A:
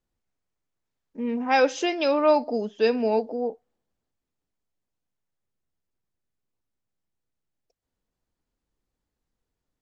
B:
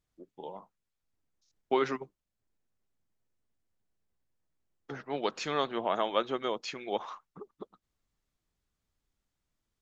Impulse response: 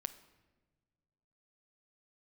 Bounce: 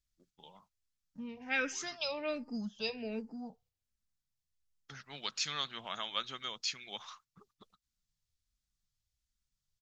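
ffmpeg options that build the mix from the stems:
-filter_complex "[0:a]bass=f=250:g=7,treble=f=4k:g=-1,asplit=2[a][b];[b]afreqshift=-1.3[c];[a][c]amix=inputs=2:normalize=1,volume=-1.5dB,asplit=2[d][e];[1:a]equalizer=f=5.1k:w=0.68:g=10,volume=-3.5dB[f];[e]apad=whole_len=432772[g];[f][g]sidechaincompress=threshold=-41dB:ratio=10:attack=16:release=408[h];[d][h]amix=inputs=2:normalize=0,equalizer=f=1.3k:w=0.45:g=-6,agate=range=-6dB:threshold=-60dB:ratio=16:detection=peak,firequalizer=gain_entry='entry(100,0);entry(340,-16);entry(1300,2)':delay=0.05:min_phase=1"

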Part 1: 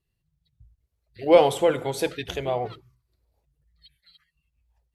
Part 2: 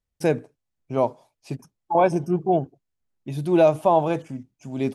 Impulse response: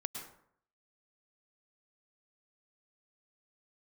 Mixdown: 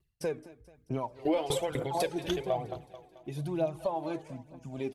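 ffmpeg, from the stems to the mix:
-filter_complex "[0:a]aeval=exprs='val(0)*pow(10,-21*if(lt(mod(4*n/s,1),2*abs(4)/1000),1-mod(4*n/s,1)/(2*abs(4)/1000),(mod(4*n/s,1)-2*abs(4)/1000)/(1-2*abs(4)/1000))/20)':c=same,volume=2dB,asplit=2[a][b];[b]volume=-19dB[c];[1:a]acompressor=threshold=-24dB:ratio=6,agate=range=-13dB:threshold=-53dB:ratio=16:detection=peak,flanger=delay=3:depth=4:regen=84:speed=1:shape=sinusoidal,volume=-2.5dB,asplit=2[d][e];[e]volume=-17.5dB[f];[c][f]amix=inputs=2:normalize=0,aecho=0:1:218|436|654|872|1090|1308|1526|1744:1|0.54|0.292|0.157|0.085|0.0459|0.0248|0.0134[g];[a][d][g]amix=inputs=3:normalize=0,aphaser=in_gain=1:out_gain=1:delay=3.5:decay=0.54:speed=1.1:type=triangular,alimiter=limit=-19.5dB:level=0:latency=1:release=125"

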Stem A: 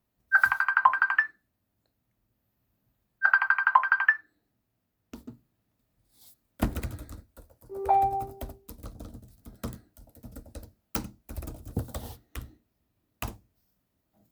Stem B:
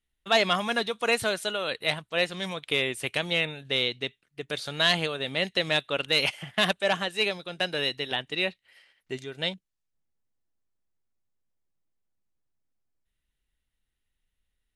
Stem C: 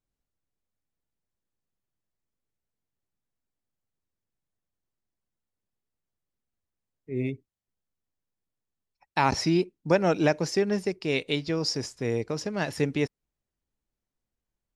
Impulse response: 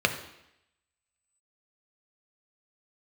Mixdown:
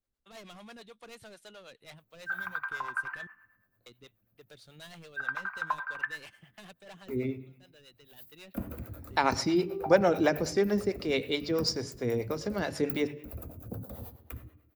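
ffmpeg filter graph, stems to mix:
-filter_complex "[0:a]aexciter=amount=3.6:drive=5.8:freq=12k,acompressor=threshold=-37dB:ratio=2,equalizer=f=3.9k:t=o:w=1.7:g=-9,adelay=1950,volume=-6.5dB,asplit=2[a][b];[b]volume=-4dB[c];[1:a]lowshelf=f=410:g=5.5,asoftclip=type=hard:threshold=-26dB,volume=-17dB,asplit=3[d][e][f];[d]atrim=end=3.27,asetpts=PTS-STARTPTS,afade=t=out:st=3.266:d=0.004:c=hsin[g];[e]atrim=start=3.27:end=3.86,asetpts=PTS-STARTPTS,volume=0[h];[f]atrim=start=3.86,asetpts=PTS-STARTPTS,afade=t=in:d=0.004:c=hsin[i];[g][h][i]concat=n=3:v=0:a=1[j];[2:a]volume=-1.5dB,asplit=3[k][l][m];[l]volume=-15.5dB[n];[m]apad=whole_len=650732[o];[j][o]sidechaincompress=threshold=-42dB:ratio=4:attack=33:release=1120[p];[3:a]atrim=start_sample=2205[q];[c][n]amix=inputs=2:normalize=0[r];[r][q]afir=irnorm=-1:irlink=0[s];[a][p][k][s]amix=inputs=4:normalize=0,acrossover=split=400[t][u];[t]aeval=exprs='val(0)*(1-0.7/2+0.7/2*cos(2*PI*9.2*n/s))':c=same[v];[u]aeval=exprs='val(0)*(1-0.7/2-0.7/2*cos(2*PI*9.2*n/s))':c=same[w];[v][w]amix=inputs=2:normalize=0"

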